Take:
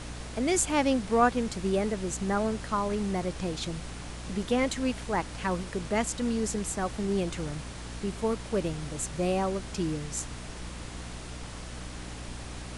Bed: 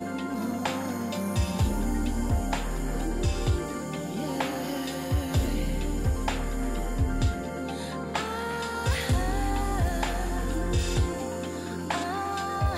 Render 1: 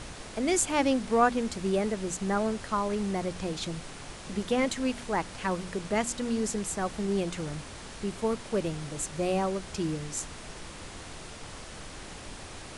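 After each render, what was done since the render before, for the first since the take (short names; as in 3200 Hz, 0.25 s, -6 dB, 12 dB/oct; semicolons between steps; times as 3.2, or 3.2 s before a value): de-hum 60 Hz, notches 5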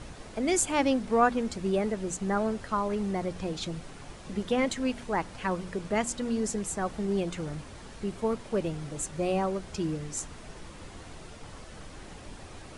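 denoiser 7 dB, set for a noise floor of -44 dBFS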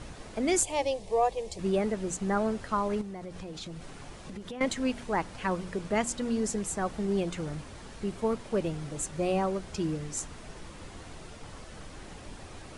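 0.63–1.59 fixed phaser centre 590 Hz, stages 4; 3.01–4.61 compressor, threshold -37 dBFS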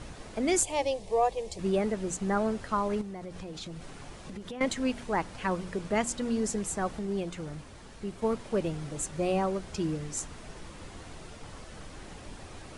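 6.99–8.22 gain -3.5 dB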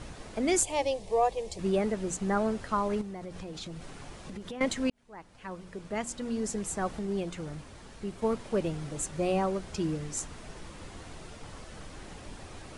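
4.9–6.96 fade in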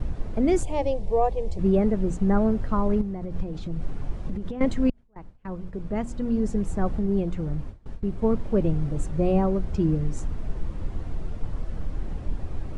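gate with hold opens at -37 dBFS; tilt -4 dB/oct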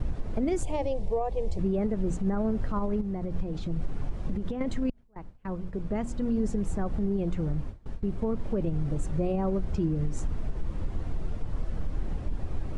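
compressor, threshold -21 dBFS, peak gain reduction 7 dB; limiter -19.5 dBFS, peak gain reduction 7 dB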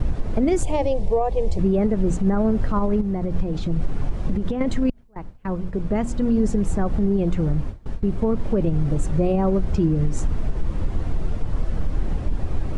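gain +8 dB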